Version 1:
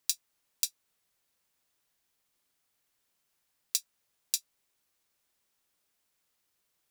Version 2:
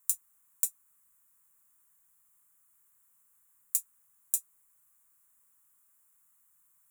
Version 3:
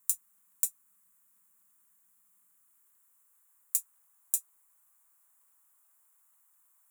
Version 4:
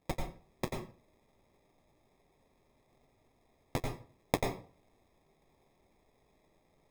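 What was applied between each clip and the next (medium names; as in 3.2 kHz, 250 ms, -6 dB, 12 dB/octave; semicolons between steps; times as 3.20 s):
peak limiter -12.5 dBFS, peak gain reduction 8 dB; FFT filter 190 Hz 0 dB, 430 Hz -28 dB, 1.1 kHz +5 dB, 5 kHz -18 dB, 7.3 kHz +7 dB, 11 kHz +10 dB; trim +2 dB
crackle 22 per s -68 dBFS; high-pass sweep 200 Hz -> 650 Hz, 2.45–3.93 s
sample-and-hold 30×; on a send at -1.5 dB: reverberation RT60 0.40 s, pre-delay 88 ms; on the sum: trim -5 dB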